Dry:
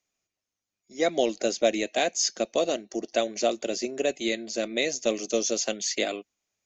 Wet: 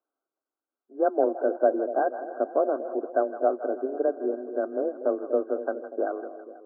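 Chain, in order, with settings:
linear-phase brick-wall band-pass 220–1,600 Hz
frequency shifter +22 Hz
echo with a time of its own for lows and highs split 670 Hz, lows 241 ms, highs 162 ms, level −11 dB
level +1.5 dB

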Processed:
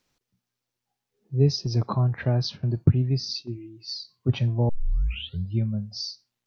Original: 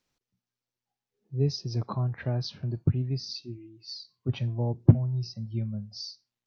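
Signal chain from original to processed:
0:01.66–0:03.50: noise gate −42 dBFS, range −7 dB
0:04.69: tape start 0.88 s
level +6 dB

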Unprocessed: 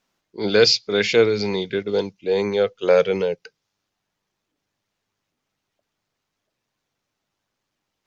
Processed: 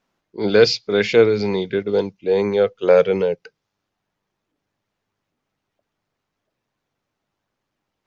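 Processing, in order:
high-shelf EQ 2,900 Hz −10 dB
level +3 dB

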